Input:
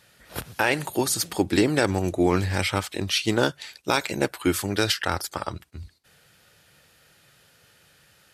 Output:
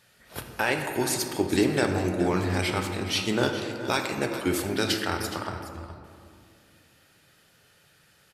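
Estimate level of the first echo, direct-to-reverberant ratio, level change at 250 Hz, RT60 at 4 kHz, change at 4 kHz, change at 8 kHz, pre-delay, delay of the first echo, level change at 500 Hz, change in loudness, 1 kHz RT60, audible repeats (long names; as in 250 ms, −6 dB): −13.5 dB, 3.0 dB, −2.0 dB, 1.1 s, −3.0 dB, −3.5 dB, 3 ms, 419 ms, −2.0 dB, −2.5 dB, 2.0 s, 1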